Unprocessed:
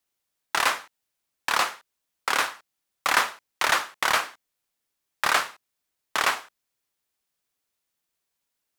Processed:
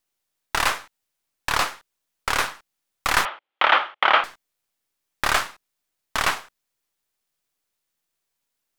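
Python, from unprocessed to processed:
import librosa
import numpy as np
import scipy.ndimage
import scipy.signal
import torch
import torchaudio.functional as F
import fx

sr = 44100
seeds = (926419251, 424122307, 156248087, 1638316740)

y = np.where(x < 0.0, 10.0 ** (-7.0 / 20.0) * x, x)
y = fx.cabinet(y, sr, low_hz=320.0, low_slope=12, high_hz=3300.0, hz=(340.0, 580.0, 820.0, 1300.0, 2200.0, 3200.0), db=(4, 6, 7, 7, 3, 8), at=(3.25, 4.24))
y = y * librosa.db_to_amplitude(3.5)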